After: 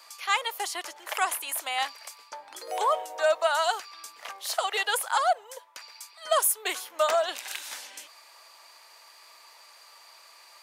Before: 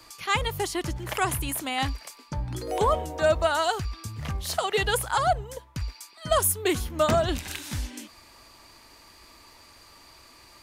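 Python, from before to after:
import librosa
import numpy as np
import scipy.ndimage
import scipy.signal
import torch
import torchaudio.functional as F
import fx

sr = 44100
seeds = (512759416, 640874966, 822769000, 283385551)

y = scipy.signal.sosfilt(scipy.signal.butter(4, 570.0, 'highpass', fs=sr, output='sos'), x)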